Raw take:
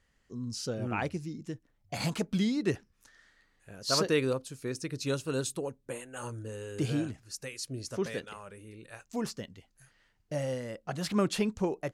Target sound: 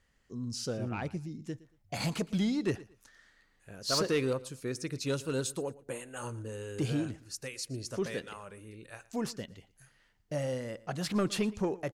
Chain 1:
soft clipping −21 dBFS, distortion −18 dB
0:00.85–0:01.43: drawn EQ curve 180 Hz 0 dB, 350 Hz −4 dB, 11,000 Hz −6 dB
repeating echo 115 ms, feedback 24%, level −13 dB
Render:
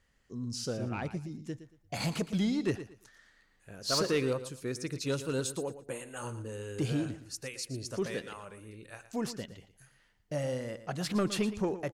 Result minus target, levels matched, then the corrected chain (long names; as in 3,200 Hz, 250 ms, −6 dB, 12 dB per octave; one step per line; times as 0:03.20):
echo-to-direct +7 dB
soft clipping −21 dBFS, distortion −18 dB
0:00.85–0:01.43: drawn EQ curve 180 Hz 0 dB, 350 Hz −4 dB, 11,000 Hz −6 dB
repeating echo 115 ms, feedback 24%, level −20 dB